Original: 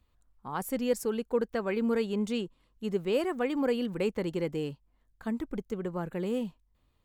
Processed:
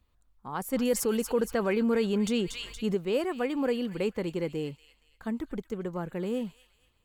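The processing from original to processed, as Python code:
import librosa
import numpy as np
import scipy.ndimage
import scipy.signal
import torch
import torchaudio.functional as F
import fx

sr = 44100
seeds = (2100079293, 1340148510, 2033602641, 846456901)

y = fx.echo_wet_highpass(x, sr, ms=234, feedback_pct=38, hz=2100.0, wet_db=-11)
y = fx.env_flatten(y, sr, amount_pct=50, at=(0.73, 2.95))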